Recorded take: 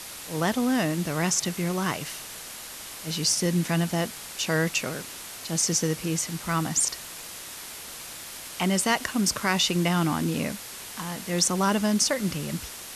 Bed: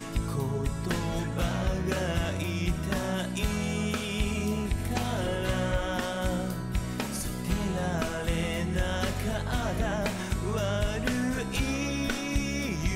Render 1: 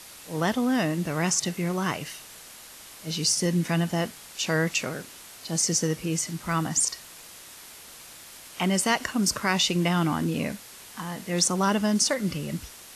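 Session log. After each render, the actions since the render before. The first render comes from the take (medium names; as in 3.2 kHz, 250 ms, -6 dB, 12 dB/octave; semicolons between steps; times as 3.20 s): noise print and reduce 6 dB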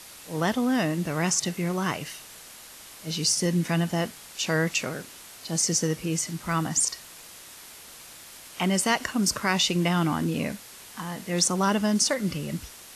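no audible change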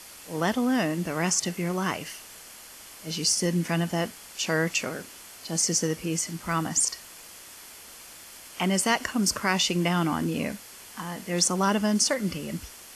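peaking EQ 140 Hz -10 dB 0.25 oct; band-stop 3.8 kHz, Q 11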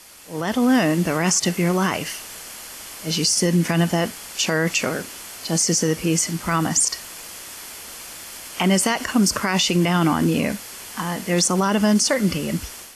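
peak limiter -18.5 dBFS, peak gain reduction 9 dB; level rider gain up to 9 dB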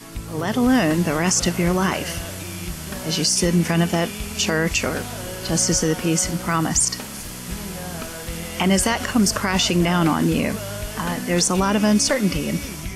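add bed -2.5 dB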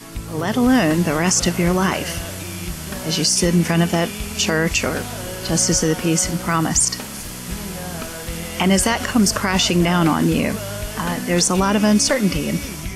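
trim +2 dB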